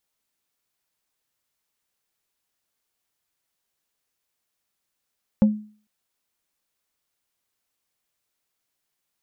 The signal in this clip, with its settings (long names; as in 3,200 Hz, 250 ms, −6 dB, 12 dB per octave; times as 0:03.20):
struck wood plate, lowest mode 212 Hz, decay 0.42 s, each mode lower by 11 dB, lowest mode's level −9.5 dB